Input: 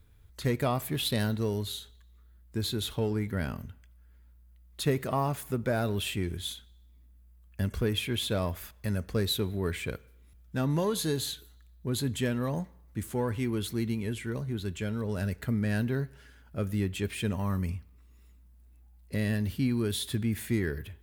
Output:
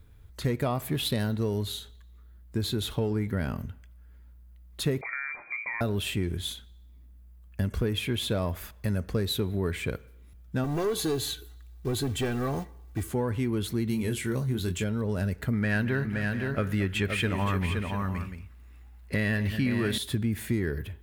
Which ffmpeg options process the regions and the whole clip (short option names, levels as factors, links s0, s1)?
-filter_complex "[0:a]asettb=1/sr,asplit=3[s0][s1][s2];[s0]atrim=end=5.014[s3];[s1]atrim=start=5.01:end=5.81,asetpts=PTS-STARTPTS,afade=t=in:d=0.004:c=qsin,afade=t=out:st=0.796:d=0.004:c=qsin,acompressor=threshold=0.02:ratio=5:attack=3.2:release=140:knee=1:detection=peak,asplit=2[s4][s5];[s5]adelay=23,volume=0.224[s6];[s4][s6]amix=inputs=2:normalize=0,atrim=end_sample=35280,lowpass=f=2100:t=q:w=0.5098,lowpass=f=2100:t=q:w=0.6013,lowpass=f=2100:t=q:w=0.9,lowpass=f=2100:t=q:w=2.563,afreqshift=-2500[s7];[s2]atrim=start=5.806[s8];[s3][s7]acrossfade=d=0.004:c1=hsin:c2=qsin[s9];[s9][s8]acrossfade=d=0.004:c1=qsin:c2=hsin,asettb=1/sr,asplit=3[s10][s11][s12];[s10]atrim=end=10.644[s13];[s11]atrim=start=10.64:end=13.11,asetpts=PTS-STARTPTS,afade=t=in:d=0.004:c=qsin,afade=t=out:st=2.466:d=0.004:c=qsin,asoftclip=type=hard:threshold=0.0447,acrusher=bits=5:mode=log:mix=0:aa=0.000001,aecho=1:1:2.6:0.57,atrim=end_sample=108927[s14];[s12]atrim=start=13.106[s15];[s13][s14]acrossfade=d=0.004:c1=hsin:c2=qsin[s16];[s16][s15]acrossfade=d=0.004:c1=qsin:c2=hsin,asettb=1/sr,asplit=3[s17][s18][s19];[s17]atrim=end=13.884[s20];[s18]atrim=start=13.88:end=14.84,asetpts=PTS-STARTPTS,afade=t=in:d=0.004:c=qsin,afade=t=out:st=0.956:d=0.004:c=qsin,highshelf=f=4300:g=10,asplit=2[s21][s22];[s22]adelay=23,volume=0.473[s23];[s21][s23]amix=inputs=2:normalize=0,atrim=end_sample=42336[s24];[s19]atrim=start=14.836[s25];[s20][s24]acrossfade=d=0.004:c1=hsin:c2=qsin[s26];[s26][s25]acrossfade=d=0.004:c1=qsin:c2=hsin,asettb=1/sr,asplit=3[s27][s28][s29];[s27]atrim=end=15.534[s30];[s28]atrim=start=15.53:end=19.98,asetpts=PTS-STARTPTS,afade=t=in:d=0.004:c=qsin,afade=t=out:st=4.446:d=0.004:c=qsin,equalizer=f=1800:t=o:w=2.2:g=10.5,aecho=1:1:220|229|519|692:0.126|0.126|0.447|0.168,atrim=end_sample=196245[s31];[s29]atrim=start=19.976[s32];[s30][s31]acrossfade=d=0.004:c1=hsin:c2=qsin[s33];[s33][s32]acrossfade=d=0.004:c1=qsin:c2=hsin,equalizer=f=15000:t=o:w=2.9:g=-4.5,acompressor=threshold=0.0282:ratio=2.5,volume=1.88"